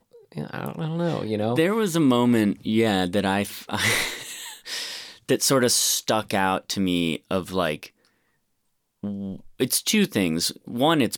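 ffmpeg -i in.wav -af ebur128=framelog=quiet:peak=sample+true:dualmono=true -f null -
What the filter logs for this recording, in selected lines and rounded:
Integrated loudness:
  I:         -20.1 LUFS
  Threshold: -30.7 LUFS
Loudness range:
  LRA:         5.1 LU
  Threshold: -40.9 LUFS
  LRA low:   -24.4 LUFS
  LRA high:  -19.3 LUFS
Sample peak:
  Peak:       -9.5 dBFS
True peak:
  Peak:       -8.9 dBFS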